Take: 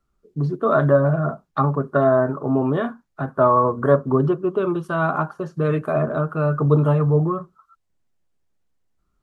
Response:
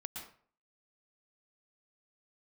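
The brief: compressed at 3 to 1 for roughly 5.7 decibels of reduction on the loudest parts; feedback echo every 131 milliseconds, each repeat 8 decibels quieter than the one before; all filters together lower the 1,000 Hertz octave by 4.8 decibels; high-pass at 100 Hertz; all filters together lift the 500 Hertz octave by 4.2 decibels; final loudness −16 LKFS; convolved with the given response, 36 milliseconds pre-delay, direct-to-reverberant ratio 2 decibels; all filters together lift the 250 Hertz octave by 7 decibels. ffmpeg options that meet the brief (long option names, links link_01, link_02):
-filter_complex "[0:a]highpass=100,equalizer=frequency=250:width_type=o:gain=8.5,equalizer=frequency=500:width_type=o:gain=5.5,equalizer=frequency=1000:width_type=o:gain=-8.5,acompressor=threshold=-14dB:ratio=3,aecho=1:1:131|262|393|524|655:0.398|0.159|0.0637|0.0255|0.0102,asplit=2[link_01][link_02];[1:a]atrim=start_sample=2205,adelay=36[link_03];[link_02][link_03]afir=irnorm=-1:irlink=0,volume=0dB[link_04];[link_01][link_04]amix=inputs=2:normalize=0,volume=1dB"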